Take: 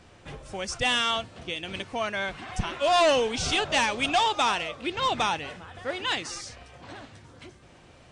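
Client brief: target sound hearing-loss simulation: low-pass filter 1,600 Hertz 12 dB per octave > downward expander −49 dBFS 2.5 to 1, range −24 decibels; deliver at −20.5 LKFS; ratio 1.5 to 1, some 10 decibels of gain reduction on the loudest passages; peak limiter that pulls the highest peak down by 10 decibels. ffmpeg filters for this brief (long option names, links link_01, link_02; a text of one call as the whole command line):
ffmpeg -i in.wav -af "acompressor=threshold=-48dB:ratio=1.5,alimiter=level_in=10.5dB:limit=-24dB:level=0:latency=1,volume=-10.5dB,lowpass=1600,agate=range=-24dB:threshold=-49dB:ratio=2.5,volume=25dB" out.wav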